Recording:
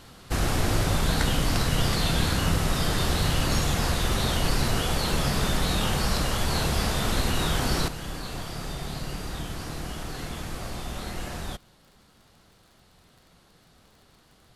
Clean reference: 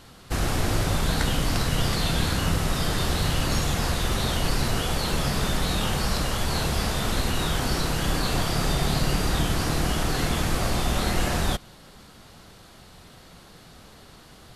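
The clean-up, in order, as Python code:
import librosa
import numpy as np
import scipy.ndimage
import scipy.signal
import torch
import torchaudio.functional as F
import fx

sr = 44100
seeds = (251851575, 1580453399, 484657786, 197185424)

y = fx.fix_declick_ar(x, sr, threshold=6.5)
y = fx.fix_level(y, sr, at_s=7.88, step_db=10.0)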